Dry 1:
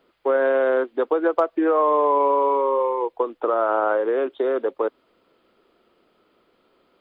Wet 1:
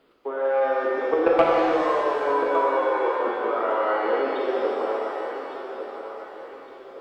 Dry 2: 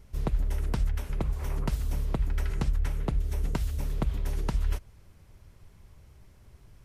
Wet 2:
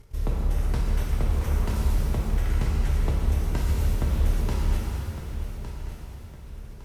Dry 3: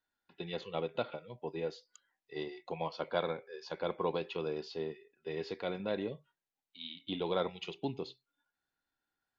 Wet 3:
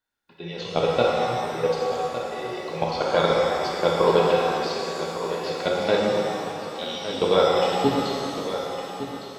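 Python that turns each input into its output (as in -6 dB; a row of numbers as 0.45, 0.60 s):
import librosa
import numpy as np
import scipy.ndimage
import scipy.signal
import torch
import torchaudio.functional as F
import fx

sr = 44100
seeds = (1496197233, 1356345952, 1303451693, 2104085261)

p1 = fx.level_steps(x, sr, step_db=17)
p2 = p1 + fx.echo_feedback(p1, sr, ms=1159, feedback_pct=40, wet_db=-11, dry=0)
p3 = fx.fold_sine(p2, sr, drive_db=3, ceiling_db=-9.0)
p4 = fx.rev_shimmer(p3, sr, seeds[0], rt60_s=2.5, semitones=7, shimmer_db=-8, drr_db=-3.5)
y = p4 * 10.0 ** (-24 / 20.0) / np.sqrt(np.mean(np.square(p4)))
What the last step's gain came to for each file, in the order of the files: -2.0, -1.0, +7.5 dB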